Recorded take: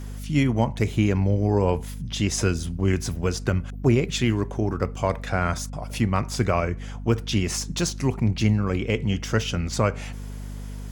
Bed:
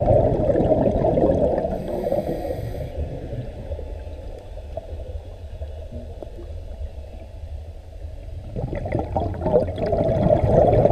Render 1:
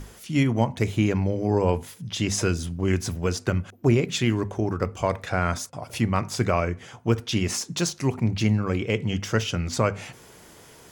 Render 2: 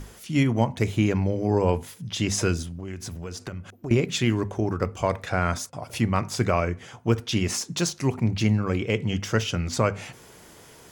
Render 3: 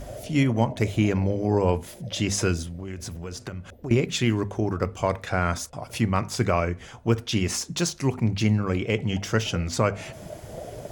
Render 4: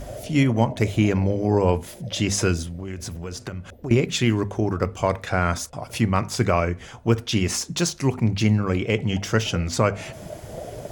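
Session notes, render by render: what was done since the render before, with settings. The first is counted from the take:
mains-hum notches 50/100/150/200/250 Hz
0:02.62–0:03.91: downward compressor 4 to 1, threshold −32 dBFS
mix in bed −22.5 dB
level +2.5 dB

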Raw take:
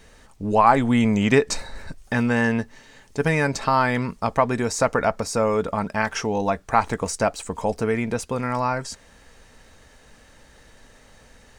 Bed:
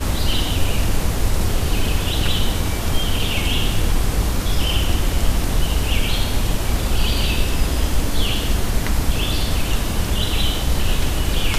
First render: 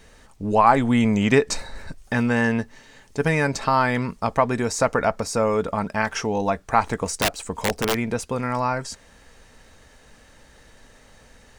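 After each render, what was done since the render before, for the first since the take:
0:07.18–0:07.96: wrap-around overflow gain 14 dB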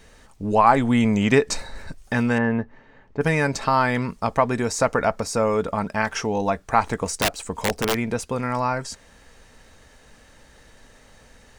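0:02.38–0:03.21: low-pass filter 1,600 Hz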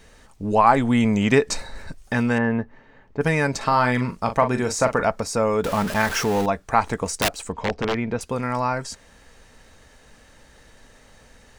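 0:03.57–0:05.03: double-tracking delay 40 ms −8.5 dB
0:05.64–0:06.46: converter with a step at zero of −24.5 dBFS
0:07.52–0:08.21: high-frequency loss of the air 180 metres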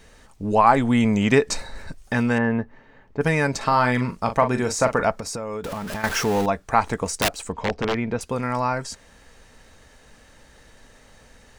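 0:05.18–0:06.04: downward compressor 12 to 1, threshold −26 dBFS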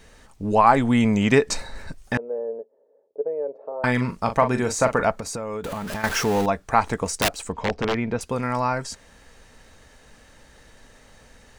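0:02.17–0:03.84: flat-topped band-pass 500 Hz, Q 2.7
0:04.60–0:05.85: notch filter 5,300 Hz, Q 9.4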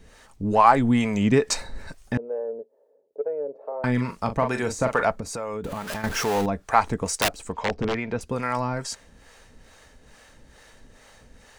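in parallel at −10 dB: soft clipping −20.5 dBFS, distortion −7 dB
on the sum: two-band tremolo in antiphase 2.3 Hz, depth 70%, crossover 440 Hz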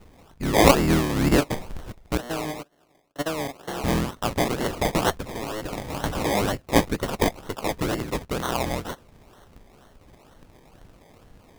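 sub-harmonics by changed cycles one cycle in 3, inverted
sample-and-hold swept by an LFO 25×, swing 60% 2.1 Hz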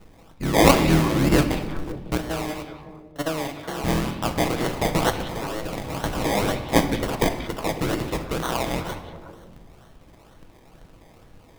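echo through a band-pass that steps 184 ms, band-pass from 3,000 Hz, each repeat −1.4 octaves, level −8 dB
rectangular room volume 880 cubic metres, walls mixed, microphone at 0.65 metres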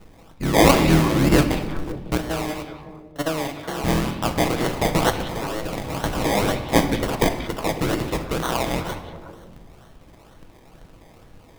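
level +2 dB
brickwall limiter −3 dBFS, peak gain reduction 3 dB

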